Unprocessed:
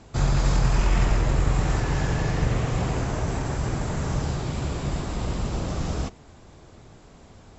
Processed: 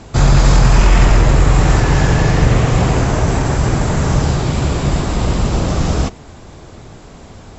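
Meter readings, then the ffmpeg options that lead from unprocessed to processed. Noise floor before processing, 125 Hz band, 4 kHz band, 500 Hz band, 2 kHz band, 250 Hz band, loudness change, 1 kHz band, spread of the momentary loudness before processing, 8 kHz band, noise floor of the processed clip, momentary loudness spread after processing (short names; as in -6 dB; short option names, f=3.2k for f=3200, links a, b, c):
-50 dBFS, +11.5 dB, +12.0 dB, +12.0 dB, +12.0 dB, +12.0 dB, +11.5 dB, +12.0 dB, 7 LU, n/a, -38 dBFS, 6 LU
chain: -af "apsyclip=14.5dB,volume=-2.5dB"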